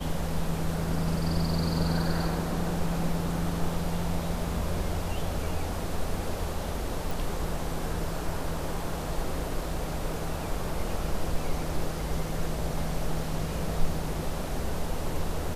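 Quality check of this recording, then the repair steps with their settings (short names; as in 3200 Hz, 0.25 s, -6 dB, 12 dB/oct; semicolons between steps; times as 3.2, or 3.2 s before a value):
7.11 pop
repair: de-click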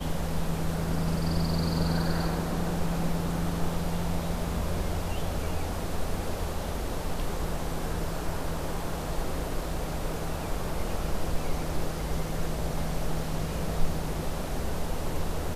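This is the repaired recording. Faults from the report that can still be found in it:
none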